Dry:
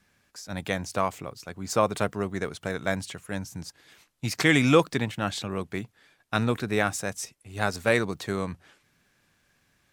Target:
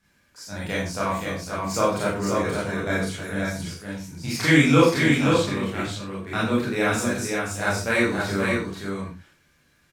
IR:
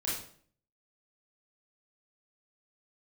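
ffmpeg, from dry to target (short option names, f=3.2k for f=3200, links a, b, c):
-filter_complex "[0:a]aecho=1:1:525:0.631[a];[1:a]atrim=start_sample=2205,afade=t=out:st=0.21:d=0.01,atrim=end_sample=9702[b];[a][b]afir=irnorm=-1:irlink=0,volume=-2dB"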